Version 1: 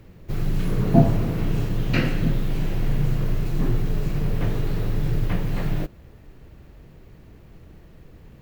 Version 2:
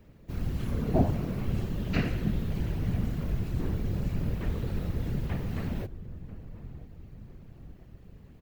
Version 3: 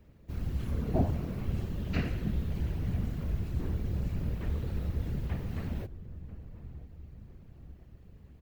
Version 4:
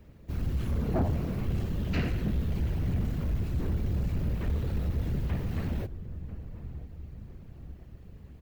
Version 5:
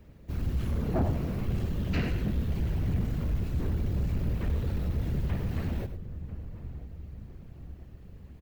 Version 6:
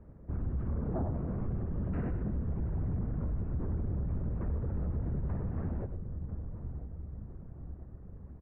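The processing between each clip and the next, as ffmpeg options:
-filter_complex "[0:a]asplit=2[a][b];[b]adelay=992,lowpass=f=880:p=1,volume=-14.5dB,asplit=2[c][d];[d]adelay=992,lowpass=f=880:p=1,volume=0.54,asplit=2[e][f];[f]adelay=992,lowpass=f=880:p=1,volume=0.54,asplit=2[g][h];[h]adelay=992,lowpass=f=880:p=1,volume=0.54,asplit=2[i][j];[j]adelay=992,lowpass=f=880:p=1,volume=0.54[k];[a][c][e][g][i][k]amix=inputs=6:normalize=0,afftfilt=real='hypot(re,im)*cos(2*PI*random(0))':imag='hypot(re,im)*sin(2*PI*random(1))':win_size=512:overlap=0.75,volume=-2dB"
-af "equalizer=f=70:w=3:g=8,volume=-4.5dB"
-af "asoftclip=type=tanh:threshold=-26.5dB,volume=5dB"
-af "aecho=1:1:100:0.266"
-af "lowpass=f=1.4k:w=0.5412,lowpass=f=1.4k:w=1.3066,alimiter=level_in=3dB:limit=-24dB:level=0:latency=1:release=119,volume=-3dB"

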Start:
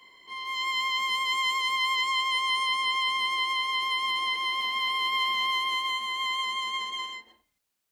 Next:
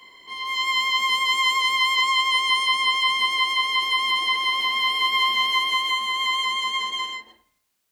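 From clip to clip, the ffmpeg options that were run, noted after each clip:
-af "bandreject=f=70.16:t=h:w=4,bandreject=f=140.32:t=h:w=4,bandreject=f=210.48:t=h:w=4,bandreject=f=280.64:t=h:w=4,bandreject=f=350.8:t=h:w=4,bandreject=f=420.96:t=h:w=4,bandreject=f=491.12:t=h:w=4,bandreject=f=561.28:t=h:w=4,bandreject=f=631.44:t=h:w=4,bandreject=f=701.6:t=h:w=4,bandreject=f=771.76:t=h:w=4,bandreject=f=841.92:t=h:w=4,bandreject=f=912.08:t=h:w=4,bandreject=f=982.24:t=h:w=4,bandreject=f=1.0524k:t=h:w=4,bandreject=f=1.12256k:t=h:w=4,bandreject=f=1.19272k:t=h:w=4,bandreject=f=1.26288k:t=h:w=4,bandreject=f=1.33304k:t=h:w=4,bandreject=f=1.4032k:t=h:w=4,bandreject=f=1.47336k:t=h:w=4,bandreject=f=1.54352k:t=h:w=4,bandreject=f=1.61368k:t=h:w=4,bandreject=f=1.68384k:t=h:w=4,bandreject=f=1.754k:t=h:w=4,bandreject=f=1.82416k:t=h:w=4,bandreject=f=1.89432k:t=h:w=4,bandreject=f=1.96448k:t=h:w=4,bandreject=f=2.03464k:t=h:w=4,bandreject=f=2.1048k:t=h:w=4,bandreject=f=2.17496k:t=h:w=4,bandreject=f=2.24512k:t=h:w=4,bandreject=f=2.31528k:t=h:w=4,bandreject=f=2.38544k:t=h:w=4,bandreject=f=2.4556k:t=h:w=4,bandreject=f=2.52576k:t=h:w=4,bandreject=f=2.59592k:t=h:w=4,bandreject=f=2.66608k:t=h:w=4,volume=6.5dB"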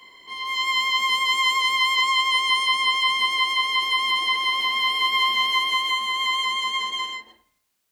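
-af anull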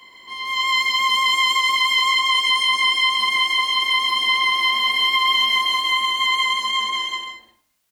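-af "equalizer=f=430:t=o:w=0.39:g=-3.5,aecho=1:1:131.2|189.5:0.562|0.398,alimiter=level_in=9.5dB:limit=-1dB:release=50:level=0:latency=1,volume=-7.5dB"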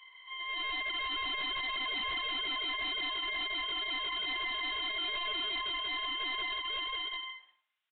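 -af "highpass=1.2k,aresample=8000,asoftclip=type=tanh:threshold=-25.5dB,aresample=44100,volume=-7.5dB"

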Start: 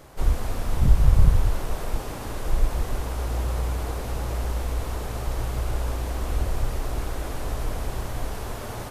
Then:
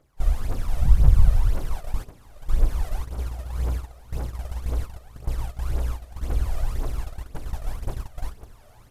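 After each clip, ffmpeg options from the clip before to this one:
-af "aphaser=in_gain=1:out_gain=1:delay=1.7:decay=0.63:speed=1.9:type=triangular,agate=range=-15dB:threshold=-19dB:ratio=16:detection=peak,volume=-6.5dB"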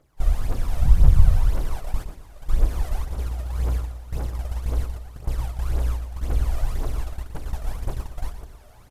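-af "aecho=1:1:117|234|351|468:0.299|0.11|0.0409|0.0151,volume=1dB"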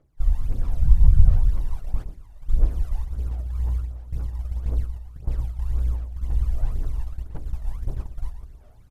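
-af "aphaser=in_gain=1:out_gain=1:delay=1.1:decay=0.5:speed=1.5:type=sinusoidal,lowshelf=f=430:g=7.5,volume=-13dB"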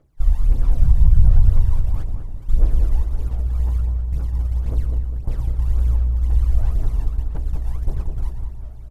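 -filter_complex "[0:a]asplit=2[a][b];[b]adelay=201,lowpass=f=890:p=1,volume=-3.5dB,asplit=2[c][d];[d]adelay=201,lowpass=f=890:p=1,volume=0.5,asplit=2[e][f];[f]adelay=201,lowpass=f=890:p=1,volume=0.5,asplit=2[g][h];[h]adelay=201,lowpass=f=890:p=1,volume=0.5,asplit=2[i][j];[j]adelay=201,lowpass=f=890:p=1,volume=0.5,asplit=2[k][l];[l]adelay=201,lowpass=f=890:p=1,volume=0.5,asplit=2[m][n];[n]adelay=201,lowpass=f=890:p=1,volume=0.5[o];[a][c][e][g][i][k][m][o]amix=inputs=8:normalize=0,alimiter=level_in=6.5dB:limit=-1dB:release=50:level=0:latency=1,volume=-2.5dB"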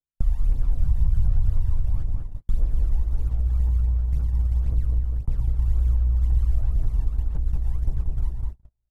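-filter_complex "[0:a]agate=range=-43dB:threshold=-25dB:ratio=16:detection=peak,acrossover=split=210|530[a][b][c];[a]acompressor=threshold=-16dB:ratio=4[d];[b]acompressor=threshold=-55dB:ratio=4[e];[c]acompressor=threshold=-55dB:ratio=4[f];[d][e][f]amix=inputs=3:normalize=0"

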